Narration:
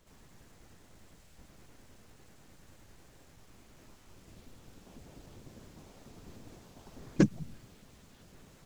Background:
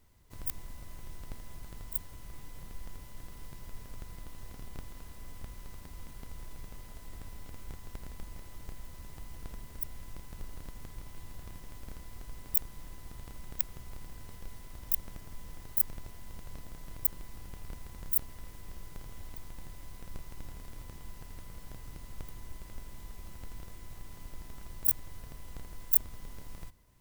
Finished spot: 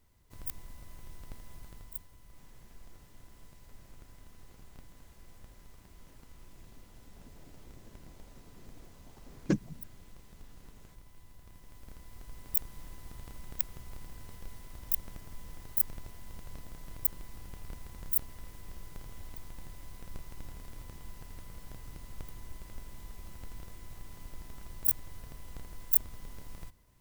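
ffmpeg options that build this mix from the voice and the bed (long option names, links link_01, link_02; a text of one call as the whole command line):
ffmpeg -i stem1.wav -i stem2.wav -filter_complex "[0:a]adelay=2300,volume=-4.5dB[link_01];[1:a]volume=6dB,afade=type=out:start_time=1.63:duration=0.46:silence=0.473151,afade=type=in:start_time=11.41:duration=1.35:silence=0.354813[link_02];[link_01][link_02]amix=inputs=2:normalize=0" out.wav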